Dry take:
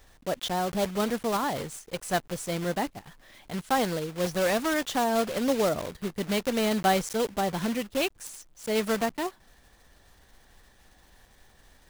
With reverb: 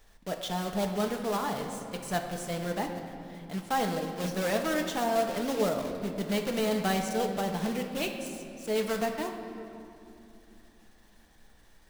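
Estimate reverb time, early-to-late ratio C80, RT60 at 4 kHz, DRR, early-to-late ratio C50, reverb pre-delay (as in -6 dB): 2.7 s, 7.0 dB, 1.7 s, 3.0 dB, 6.0 dB, 4 ms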